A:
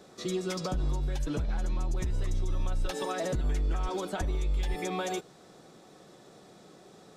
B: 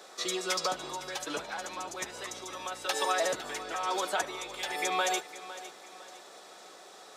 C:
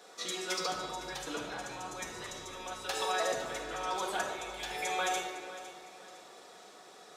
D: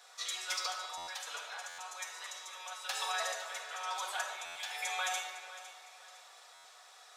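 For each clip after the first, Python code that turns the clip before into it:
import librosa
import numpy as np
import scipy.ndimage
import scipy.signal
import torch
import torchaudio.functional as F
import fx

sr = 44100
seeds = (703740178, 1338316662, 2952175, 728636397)

y1 = scipy.signal.sosfilt(scipy.signal.butter(2, 710.0, 'highpass', fs=sr, output='sos'), x)
y1 = fx.echo_feedback(y1, sr, ms=507, feedback_pct=38, wet_db=-15.0)
y1 = y1 * 10.0 ** (8.0 / 20.0)
y2 = fx.low_shelf(y1, sr, hz=86.0, db=11.5)
y2 = fx.room_shoebox(y2, sr, seeds[0], volume_m3=1300.0, walls='mixed', distance_m=1.8)
y2 = y2 * 10.0 ** (-6.0 / 20.0)
y3 = scipy.signal.sosfilt(scipy.signal.bessel(6, 1000.0, 'highpass', norm='mag', fs=sr, output='sos'), y2)
y3 = fx.buffer_glitch(y3, sr, at_s=(0.97, 1.68, 4.45, 6.54), block=512, repeats=8)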